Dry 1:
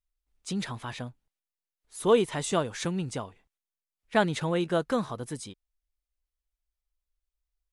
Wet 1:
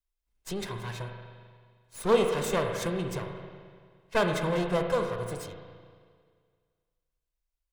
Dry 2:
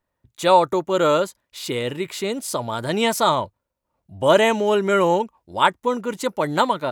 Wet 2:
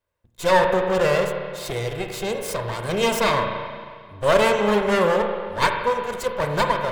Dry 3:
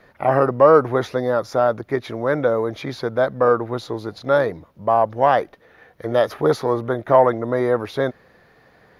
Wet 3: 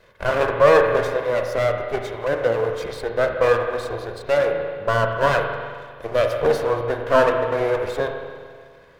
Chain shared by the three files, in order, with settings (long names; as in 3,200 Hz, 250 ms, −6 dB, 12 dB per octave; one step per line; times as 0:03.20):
lower of the sound and its delayed copy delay 1.9 ms
spring reverb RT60 1.9 s, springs 34/43 ms, chirp 55 ms, DRR 3.5 dB
level −1 dB